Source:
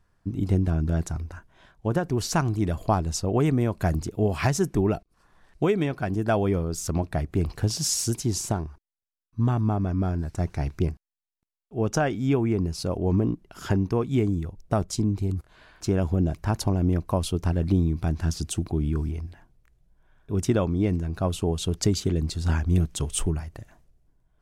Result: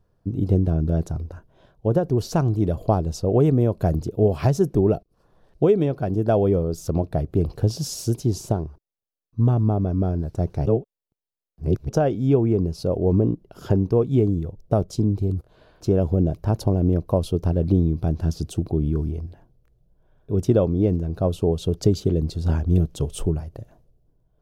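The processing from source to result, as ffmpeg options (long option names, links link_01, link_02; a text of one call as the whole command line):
ffmpeg -i in.wav -filter_complex "[0:a]asplit=3[link_01][link_02][link_03];[link_01]atrim=end=10.662[link_04];[link_02]atrim=start=10.658:end=11.892,asetpts=PTS-STARTPTS,areverse[link_05];[link_03]atrim=start=11.888[link_06];[link_04][link_05]acrossfade=duration=0.004:curve1=hsin:curve2=hsin[link_07];[link_07][link_06]acrossfade=duration=0.004:curve1=hsin:curve2=hsin,equalizer=frequency=125:width_type=o:width=1:gain=5,equalizer=frequency=500:width_type=o:width=1:gain=9,equalizer=frequency=1000:width_type=o:width=1:gain=-3,equalizer=frequency=2000:width_type=o:width=1:gain=-10,equalizer=frequency=8000:width_type=o:width=1:gain=-9" out.wav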